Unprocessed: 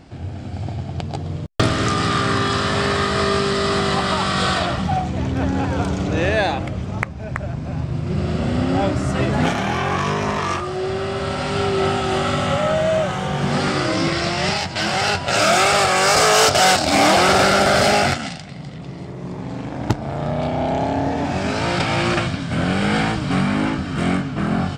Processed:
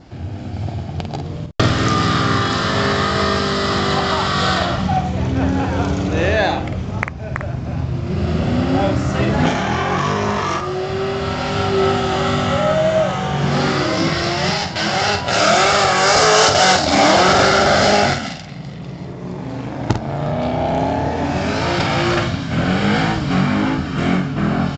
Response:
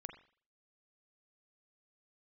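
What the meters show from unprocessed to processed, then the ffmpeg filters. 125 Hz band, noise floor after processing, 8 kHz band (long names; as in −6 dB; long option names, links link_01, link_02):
+2.5 dB, −29 dBFS, 0.0 dB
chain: -filter_complex "[0:a]adynamicequalizer=threshold=0.0112:dfrequency=2500:dqfactor=6.4:tfrequency=2500:tqfactor=6.4:attack=5:release=100:ratio=0.375:range=3:mode=cutabove:tftype=bell,asplit=2[link_01][link_02];[link_02]adelay=49,volume=-7dB[link_03];[link_01][link_03]amix=inputs=2:normalize=0,aresample=16000,aresample=44100,volume=1.5dB"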